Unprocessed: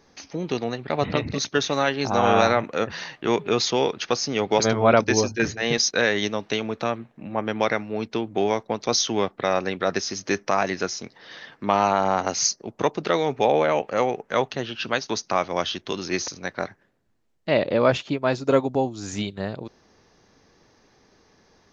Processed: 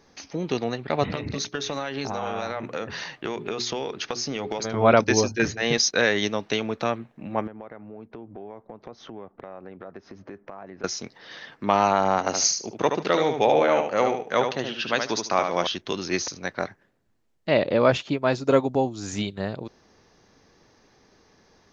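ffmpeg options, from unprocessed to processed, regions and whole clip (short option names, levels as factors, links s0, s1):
-filter_complex "[0:a]asettb=1/sr,asplit=3[s0][s1][s2];[s0]atrim=end=1.134[s3];[s1]atrim=start=1.13:end=4.74,asetpts=PTS-STARTPTS,afade=t=in:d=0.004:c=qsin,afade=t=out:st=3.606:d=0.004:c=qsin,bandreject=f=60:t=h:w=6,bandreject=f=120:t=h:w=6,bandreject=f=180:t=h:w=6,bandreject=f=240:t=h:w=6,bandreject=f=300:t=h:w=6,bandreject=f=360:t=h:w=6,bandreject=f=420:t=h:w=6,acompressor=threshold=0.0631:ratio=12:attack=3.2:release=140:knee=1:detection=peak[s4];[s2]atrim=start=4.736[s5];[s3][s4]acrossfade=d=0.004:c1=hsin:c2=qsin[s6];[s6][s5]acrossfade=d=0.004:c1=qsin:c2=hsin,asettb=1/sr,asplit=3[s7][s8][s9];[s7]atrim=end=7.474[s10];[s8]atrim=start=7.47:end=10.84,asetpts=PTS-STARTPTS,afade=t=in:d=0.004:c=qsin,afade=t=out:st=3.366:d=0.004:c=qsin,lowpass=1200,acompressor=threshold=0.0112:ratio=4:attack=3.2:release=140:knee=1:detection=peak[s11];[s9]atrim=start=10.836[s12];[s10][s11]acrossfade=d=0.004:c1=hsin:c2=qsin[s13];[s13][s12]acrossfade=d=0.004:c1=qsin:c2=hsin,asettb=1/sr,asplit=3[s14][s15][s16];[s14]atrim=end=12.194[s17];[s15]atrim=start=12.19:end=15.67,asetpts=PTS-STARTPTS,afade=t=in:d=0.004:c=qsin,afade=t=out:st=3.476:d=0.004:c=qsin,lowshelf=f=76:g=-11.5,aecho=1:1:74|148|222:0.501|0.105|0.0221,atrim=end_sample=153468[s18];[s16]atrim=start=15.666[s19];[s17][s18]acrossfade=d=0.004:c1=hsin:c2=qsin[s20];[s20][s19]acrossfade=d=0.004:c1=qsin:c2=hsin"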